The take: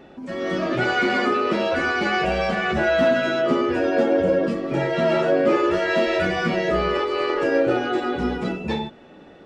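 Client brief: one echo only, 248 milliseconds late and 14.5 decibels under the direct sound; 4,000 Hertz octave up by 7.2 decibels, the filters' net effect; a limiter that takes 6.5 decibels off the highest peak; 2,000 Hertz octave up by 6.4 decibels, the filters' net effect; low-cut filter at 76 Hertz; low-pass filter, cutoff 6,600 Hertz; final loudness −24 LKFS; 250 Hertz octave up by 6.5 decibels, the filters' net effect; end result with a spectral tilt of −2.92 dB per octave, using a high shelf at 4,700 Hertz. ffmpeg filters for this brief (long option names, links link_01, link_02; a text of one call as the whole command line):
ffmpeg -i in.wav -af "highpass=76,lowpass=6600,equalizer=frequency=250:width_type=o:gain=8.5,equalizer=frequency=2000:width_type=o:gain=7.5,equalizer=frequency=4000:width_type=o:gain=8.5,highshelf=frequency=4700:gain=-3.5,alimiter=limit=-9dB:level=0:latency=1,aecho=1:1:248:0.188,volume=-6dB" out.wav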